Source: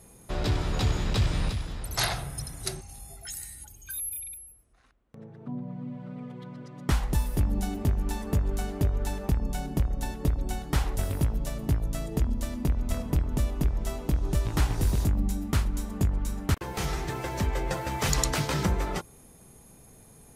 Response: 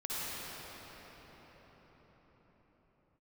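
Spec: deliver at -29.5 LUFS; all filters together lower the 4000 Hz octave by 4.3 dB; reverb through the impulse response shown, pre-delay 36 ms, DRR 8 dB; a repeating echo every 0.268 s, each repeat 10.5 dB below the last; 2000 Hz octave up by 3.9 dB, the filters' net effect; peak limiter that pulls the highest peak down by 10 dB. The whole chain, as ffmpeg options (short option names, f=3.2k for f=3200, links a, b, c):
-filter_complex "[0:a]equalizer=f=2k:t=o:g=6.5,equalizer=f=4k:t=o:g=-7.5,alimiter=limit=-22.5dB:level=0:latency=1,aecho=1:1:268|536|804:0.299|0.0896|0.0269,asplit=2[a][b];[1:a]atrim=start_sample=2205,adelay=36[c];[b][c]afir=irnorm=-1:irlink=0,volume=-13.5dB[d];[a][d]amix=inputs=2:normalize=0,volume=3dB"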